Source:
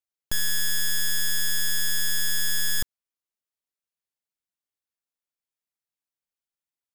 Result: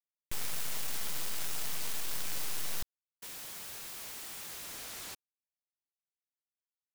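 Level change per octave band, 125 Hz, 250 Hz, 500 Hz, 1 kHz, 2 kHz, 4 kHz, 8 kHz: -8.5 dB, -4.5 dB, +2.0 dB, +3.0 dB, -14.5 dB, -13.5 dB, -11.5 dB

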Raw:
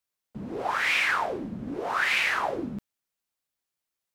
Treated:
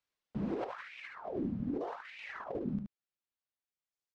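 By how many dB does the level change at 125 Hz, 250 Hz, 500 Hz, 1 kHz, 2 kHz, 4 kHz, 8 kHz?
-0.5 dB, -1.5 dB, -6.5 dB, -16.0 dB, -22.5 dB, -24.0 dB, under -25 dB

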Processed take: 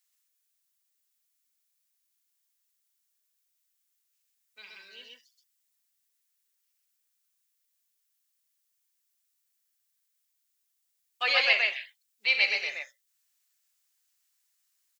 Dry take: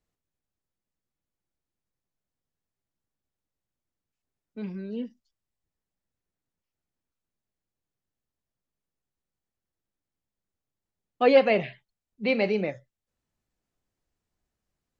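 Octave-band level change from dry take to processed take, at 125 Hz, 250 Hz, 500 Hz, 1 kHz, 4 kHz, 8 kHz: under -40 dB, under -30 dB, -17.0 dB, -7.0 dB, +10.0 dB, no reading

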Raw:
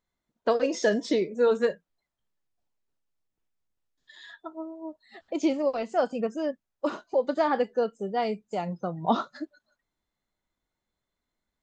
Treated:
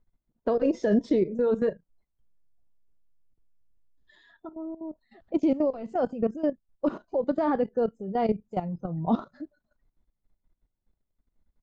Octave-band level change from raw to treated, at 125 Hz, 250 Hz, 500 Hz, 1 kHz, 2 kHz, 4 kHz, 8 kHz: +4.5 dB, +3.5 dB, -1.0 dB, -3.0 dB, -8.0 dB, under -10 dB, no reading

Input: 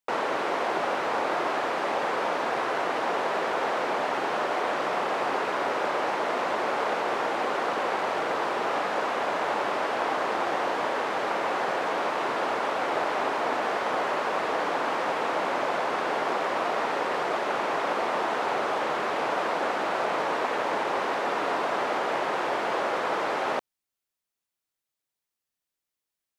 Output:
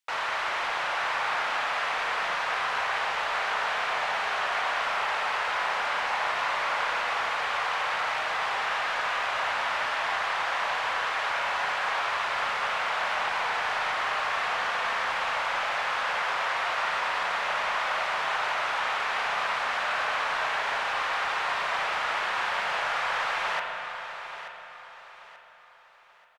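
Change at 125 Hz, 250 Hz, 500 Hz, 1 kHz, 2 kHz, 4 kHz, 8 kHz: no reading, -17.0 dB, -9.0 dB, -1.0 dB, +4.0 dB, +4.5 dB, +1.5 dB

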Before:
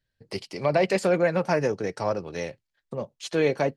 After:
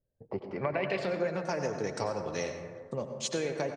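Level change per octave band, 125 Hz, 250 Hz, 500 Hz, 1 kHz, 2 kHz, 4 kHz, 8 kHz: -7.5 dB, -8.0 dB, -8.0 dB, -7.0 dB, -7.0 dB, -3.5 dB, +1.0 dB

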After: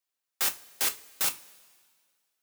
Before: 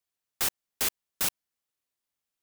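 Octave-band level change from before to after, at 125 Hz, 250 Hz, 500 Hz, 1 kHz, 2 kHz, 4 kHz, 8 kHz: -7.5 dB, -4.5 dB, -1.5 dB, +1.0 dB, +1.0 dB, +1.0 dB, +1.0 dB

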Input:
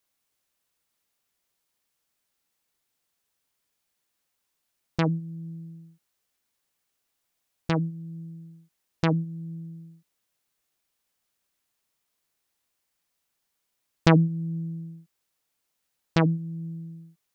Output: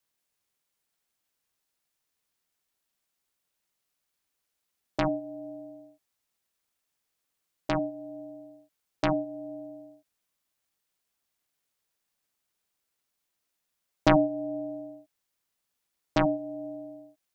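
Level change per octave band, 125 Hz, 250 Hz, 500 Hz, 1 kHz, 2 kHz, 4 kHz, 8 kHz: -12.0 dB, -3.0 dB, +3.5 dB, +1.5 dB, -2.0 dB, -3.0 dB, no reading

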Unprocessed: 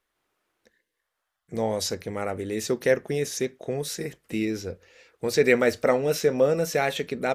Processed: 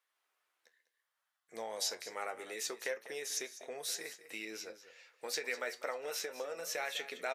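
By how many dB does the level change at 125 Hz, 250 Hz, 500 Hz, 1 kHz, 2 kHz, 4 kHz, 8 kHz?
under -35 dB, -25.0 dB, -18.5 dB, -12.0 dB, -10.5 dB, -6.0 dB, -5.5 dB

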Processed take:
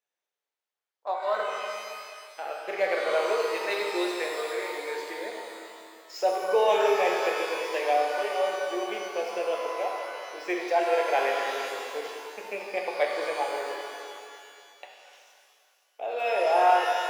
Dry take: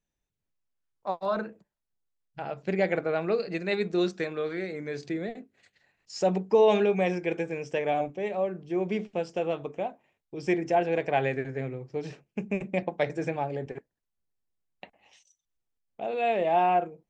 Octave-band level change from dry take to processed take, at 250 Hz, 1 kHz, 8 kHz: -8.0 dB, +3.5 dB, no reading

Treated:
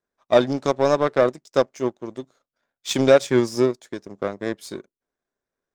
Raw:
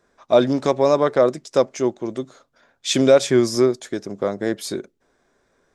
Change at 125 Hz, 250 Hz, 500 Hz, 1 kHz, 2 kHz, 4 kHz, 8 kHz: -1.5 dB, -3.0 dB, -2.0 dB, -1.0 dB, +1.0 dB, -4.0 dB, -5.5 dB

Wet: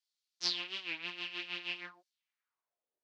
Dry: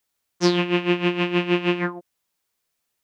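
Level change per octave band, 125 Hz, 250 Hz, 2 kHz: -36.0 dB, -32.5 dB, -13.5 dB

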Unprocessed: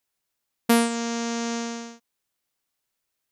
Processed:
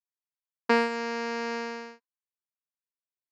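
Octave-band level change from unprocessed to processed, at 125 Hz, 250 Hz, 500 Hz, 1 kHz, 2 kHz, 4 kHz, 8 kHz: no reading, -8.5 dB, -0.5 dB, -0.5 dB, +1.5 dB, -6.5 dB, -17.5 dB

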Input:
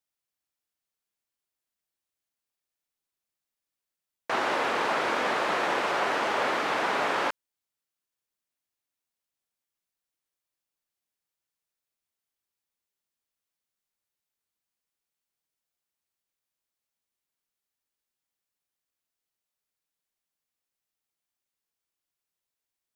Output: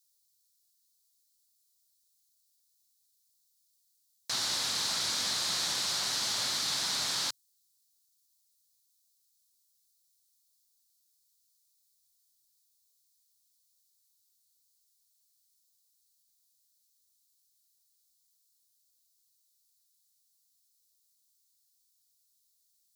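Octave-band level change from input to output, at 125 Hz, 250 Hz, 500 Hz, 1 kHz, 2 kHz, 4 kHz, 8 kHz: -2.0 dB, -13.0 dB, -19.5 dB, -15.5 dB, -11.0 dB, +7.0 dB, +13.5 dB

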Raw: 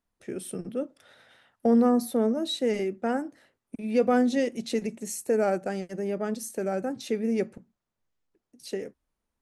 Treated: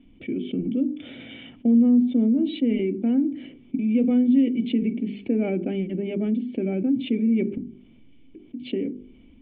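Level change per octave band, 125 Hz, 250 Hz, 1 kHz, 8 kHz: +7.5 dB, +7.5 dB, under -10 dB, under -40 dB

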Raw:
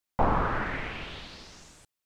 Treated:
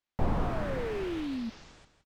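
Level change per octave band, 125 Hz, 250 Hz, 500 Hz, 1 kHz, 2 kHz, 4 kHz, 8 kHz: 0.0 dB, +3.0 dB, +0.5 dB, -9.0 dB, -8.5 dB, -5.0 dB, -4.0 dB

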